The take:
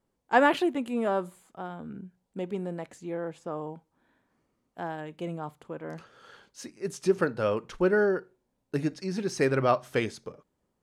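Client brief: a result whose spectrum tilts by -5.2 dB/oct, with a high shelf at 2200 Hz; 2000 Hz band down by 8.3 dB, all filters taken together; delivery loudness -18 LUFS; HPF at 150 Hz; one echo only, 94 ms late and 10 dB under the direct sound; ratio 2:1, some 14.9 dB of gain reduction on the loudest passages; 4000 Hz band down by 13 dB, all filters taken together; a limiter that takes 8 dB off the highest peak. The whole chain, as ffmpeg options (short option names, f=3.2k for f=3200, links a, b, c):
-af "highpass=150,equalizer=f=2k:t=o:g=-6,highshelf=f=2.2k:g=-8.5,equalizer=f=4k:t=o:g=-7.5,acompressor=threshold=-47dB:ratio=2,alimiter=level_in=9.5dB:limit=-24dB:level=0:latency=1,volume=-9.5dB,aecho=1:1:94:0.316,volume=27dB"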